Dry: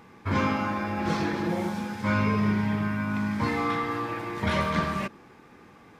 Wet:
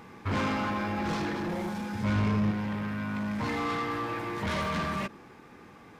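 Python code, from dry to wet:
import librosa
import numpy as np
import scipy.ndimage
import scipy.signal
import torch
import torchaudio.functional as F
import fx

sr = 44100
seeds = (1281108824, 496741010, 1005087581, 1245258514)

y = 10.0 ** (-28.0 / 20.0) * np.tanh(x / 10.0 ** (-28.0 / 20.0))
y = fx.low_shelf(y, sr, hz=200.0, db=10.5, at=(1.93, 2.51))
y = fx.rider(y, sr, range_db=10, speed_s=2.0)
y = fx.end_taper(y, sr, db_per_s=470.0)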